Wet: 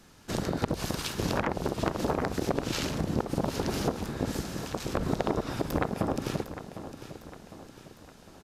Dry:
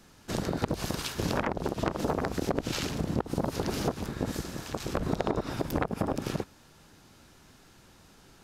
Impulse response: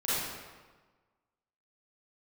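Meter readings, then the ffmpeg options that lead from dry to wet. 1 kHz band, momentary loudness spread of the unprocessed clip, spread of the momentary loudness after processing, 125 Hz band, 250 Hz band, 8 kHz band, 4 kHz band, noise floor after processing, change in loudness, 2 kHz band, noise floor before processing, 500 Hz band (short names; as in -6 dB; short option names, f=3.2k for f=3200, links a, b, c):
+1.0 dB, 5 LU, 15 LU, +0.5 dB, +1.0 dB, +1.0 dB, +1.0 dB, -53 dBFS, +0.5 dB, +1.0 dB, -57 dBFS, +1.0 dB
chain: -filter_complex "[0:a]aecho=1:1:755|1510|2265|3020|3775:0.237|0.114|0.0546|0.0262|0.0126,asplit=2[a][b];[1:a]atrim=start_sample=2205,atrim=end_sample=3528[c];[b][c]afir=irnorm=-1:irlink=0,volume=-23.5dB[d];[a][d]amix=inputs=2:normalize=0,aresample=32000,aresample=44100"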